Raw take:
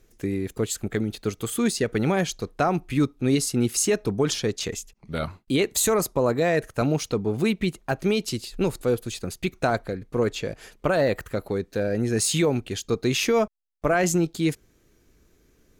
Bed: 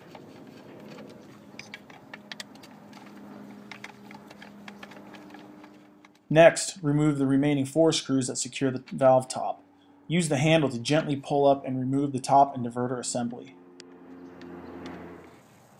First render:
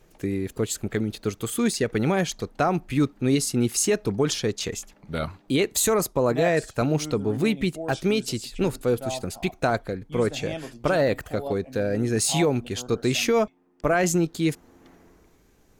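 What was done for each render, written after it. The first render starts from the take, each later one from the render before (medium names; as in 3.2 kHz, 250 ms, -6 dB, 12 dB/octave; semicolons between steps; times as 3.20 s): add bed -13 dB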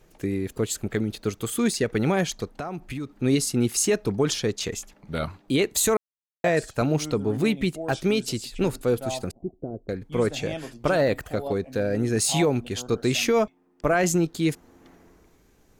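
2.44–3.15 s: compression, threshold -29 dBFS; 5.97–6.44 s: mute; 9.31–9.89 s: four-pole ladder low-pass 470 Hz, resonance 40%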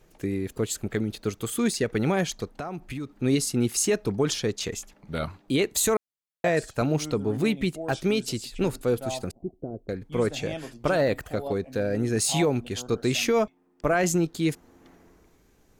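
trim -1.5 dB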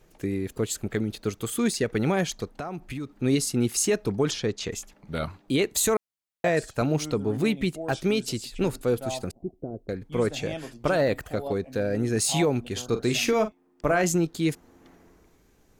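4.31–4.71 s: distance through air 60 m; 12.72–14.02 s: doubling 42 ms -10.5 dB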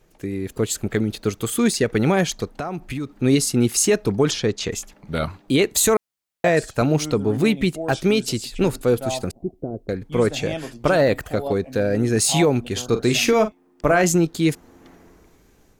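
level rider gain up to 6 dB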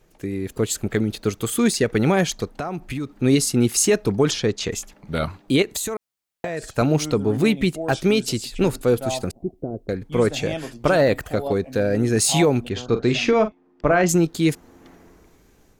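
5.62–6.68 s: compression 10:1, threshold -23 dBFS; 12.69–14.09 s: distance through air 150 m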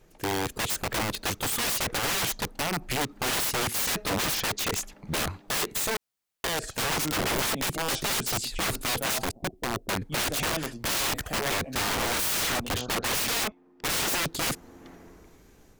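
integer overflow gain 22.5 dB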